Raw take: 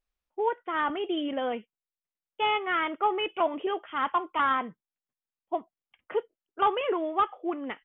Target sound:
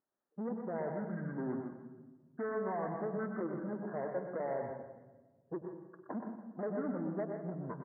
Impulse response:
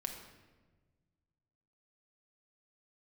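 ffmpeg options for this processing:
-filter_complex "[0:a]highshelf=frequency=2000:gain=-8.5,acompressor=threshold=-40dB:ratio=3,aresample=8000,asoftclip=type=tanh:threshold=-37.5dB,aresample=44100,asetrate=22696,aresample=44100,atempo=1.94306,highpass=210,lowpass=2800,aecho=1:1:99|163:0.224|0.266,asplit=2[link_01][link_02];[1:a]atrim=start_sample=2205,adelay=122[link_03];[link_02][link_03]afir=irnorm=-1:irlink=0,volume=-4dB[link_04];[link_01][link_04]amix=inputs=2:normalize=0,volume=5.5dB"

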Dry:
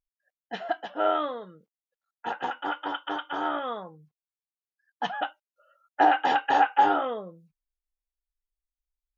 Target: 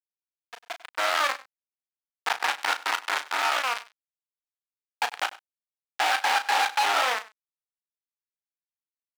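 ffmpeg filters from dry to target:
ffmpeg -i in.wav -filter_complex "[0:a]equalizer=frequency=4100:width=0.37:gain=-10,alimiter=limit=-23.5dB:level=0:latency=1:release=21,acrusher=bits=4:mix=0:aa=0.000001,asettb=1/sr,asplit=3[link_01][link_02][link_03];[link_01]atrim=end=0.914[link_04];[link_02]atrim=start=0.91:end=3.21,asetpts=PTS-STARTPTS,afade=type=in:duration=0.004:curve=qsin,afade=type=out:start_time=2.296:duration=0.004:curve=qsin,aeval=exprs='0.0668*(cos(1*acos(clip(val(0)/0.0668,-1,1)))-cos(1*PI/2))+0.0168*(cos(2*acos(clip(val(0)/0.0668,-1,1)))-cos(2*PI/2))':channel_layout=same[link_05];[link_03]atrim=start=3.206[link_06];[link_04][link_05]acrossfade=duration=0.004:curve1=hsin:curve2=qsin[link_07];[link_07][link_06]acrossfade=duration=0.004:curve1=qsin:curve2=hsin,highpass=1200,aemphasis=mode=reproduction:type=75kf,asplit=2[link_08][link_09];[link_09]adelay=35,volume=-9dB[link_10];[link_08][link_10]amix=inputs=2:normalize=0,aecho=1:1:98:0.106,dynaudnorm=framelen=130:gausssize=13:maxgain=16dB,volume=-3dB" out.wav

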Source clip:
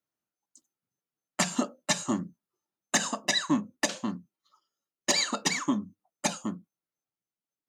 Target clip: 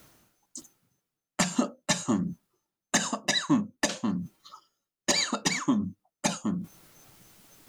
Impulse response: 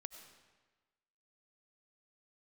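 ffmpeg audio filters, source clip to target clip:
-af "areverse,acompressor=mode=upward:threshold=-28dB:ratio=2.5,areverse,lowshelf=frequency=120:gain=11.5"

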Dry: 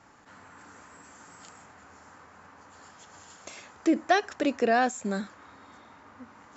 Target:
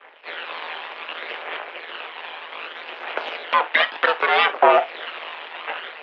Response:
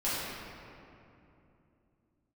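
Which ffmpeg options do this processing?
-filter_complex "[0:a]agate=range=-33dB:threshold=-47dB:ratio=3:detection=peak,acompressor=threshold=-45dB:ratio=2,aphaser=in_gain=1:out_gain=1:delay=1.9:decay=0.68:speed=0.59:type=triangular,asetrate=58866,aresample=44100,atempo=0.749154,aeval=exprs='abs(val(0))':channel_layout=same,tremolo=f=150:d=0.788,asplit=2[link_01][link_02];[1:a]atrim=start_sample=2205,atrim=end_sample=3087[link_03];[link_02][link_03]afir=irnorm=-1:irlink=0,volume=-13dB[link_04];[link_01][link_04]amix=inputs=2:normalize=0,highpass=frequency=320:width_type=q:width=0.5412,highpass=frequency=320:width_type=q:width=1.307,lowpass=frequency=2800:width_type=q:width=0.5176,lowpass=frequency=2800:width_type=q:width=0.7071,lowpass=frequency=2800:width_type=q:width=1.932,afreqshift=78,asetrate=48000,aresample=44100,alimiter=level_in=31.5dB:limit=-1dB:release=50:level=0:latency=1,volume=-2.5dB"

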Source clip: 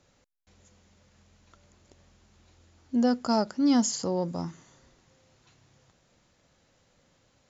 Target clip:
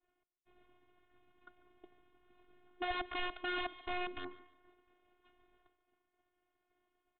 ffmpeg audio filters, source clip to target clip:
ffmpeg -i in.wav -filter_complex "[0:a]adynamicsmooth=sensitivity=3:basefreq=3000,highpass=85,acompressor=threshold=-59dB:ratio=1.5,aresample=11025,aeval=exprs='(mod(63.1*val(0)+1,2)-1)/63.1':channel_layout=same,aresample=44100,agate=range=-33dB:threshold=-56dB:ratio=3:detection=peak,asoftclip=type=tanh:threshold=-35dB,afftfilt=real='hypot(re,im)*cos(PI*b)':imag='0':win_size=512:overlap=0.75,asplit=2[link_01][link_02];[link_02]aecho=0:1:150|300|450:0.112|0.0393|0.0137[link_03];[link_01][link_03]amix=inputs=2:normalize=0,asetrate=45938,aresample=44100,aresample=8000,aresample=44100,volume=9dB" out.wav

